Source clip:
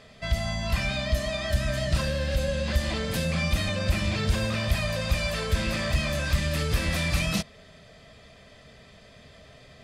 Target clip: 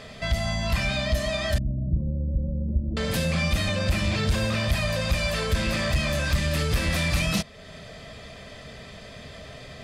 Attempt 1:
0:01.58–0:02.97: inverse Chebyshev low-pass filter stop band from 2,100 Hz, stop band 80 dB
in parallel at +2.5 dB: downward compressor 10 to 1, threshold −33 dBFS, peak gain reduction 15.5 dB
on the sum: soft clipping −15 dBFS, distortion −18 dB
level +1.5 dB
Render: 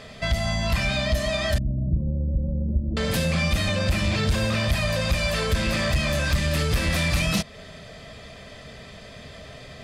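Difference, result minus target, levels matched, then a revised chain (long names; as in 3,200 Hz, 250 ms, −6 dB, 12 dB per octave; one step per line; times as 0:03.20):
downward compressor: peak gain reduction −9 dB
0:01.58–0:02.97: inverse Chebyshev low-pass filter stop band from 2,100 Hz, stop band 80 dB
in parallel at +2.5 dB: downward compressor 10 to 1, threshold −43 dBFS, peak gain reduction 24.5 dB
on the sum: soft clipping −15 dBFS, distortion −20 dB
level +1.5 dB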